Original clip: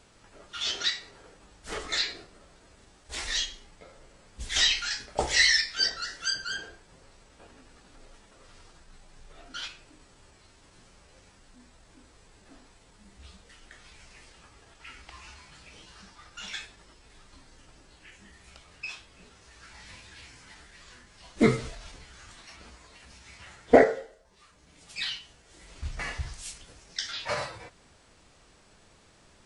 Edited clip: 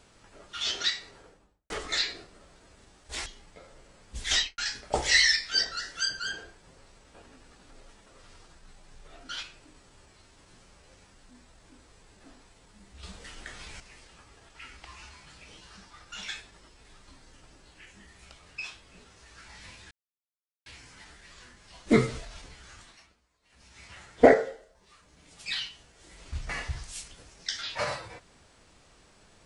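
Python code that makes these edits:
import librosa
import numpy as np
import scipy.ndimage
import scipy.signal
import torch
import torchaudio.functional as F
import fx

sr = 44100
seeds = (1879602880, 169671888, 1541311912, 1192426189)

y = fx.studio_fade_out(x, sr, start_s=1.11, length_s=0.59)
y = fx.studio_fade_out(y, sr, start_s=4.58, length_s=0.25)
y = fx.edit(y, sr, fx.cut(start_s=3.26, length_s=0.25),
    fx.clip_gain(start_s=13.28, length_s=0.77, db=8.0),
    fx.insert_silence(at_s=20.16, length_s=0.75),
    fx.fade_down_up(start_s=22.23, length_s=1.12, db=-22.0, fade_s=0.43), tone=tone)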